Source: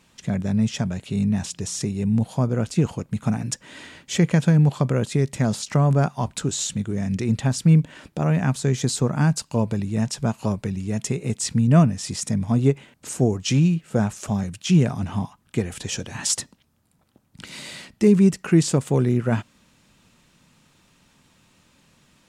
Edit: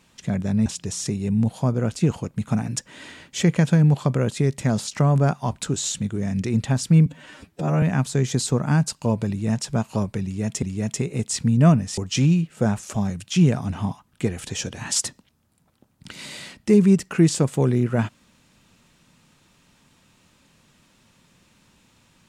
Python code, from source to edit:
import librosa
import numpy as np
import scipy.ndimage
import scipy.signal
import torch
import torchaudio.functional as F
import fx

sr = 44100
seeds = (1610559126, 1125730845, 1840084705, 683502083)

y = fx.edit(x, sr, fx.cut(start_s=0.66, length_s=0.75),
    fx.stretch_span(start_s=7.81, length_s=0.51, factor=1.5),
    fx.repeat(start_s=10.73, length_s=0.39, count=2),
    fx.cut(start_s=12.08, length_s=1.23), tone=tone)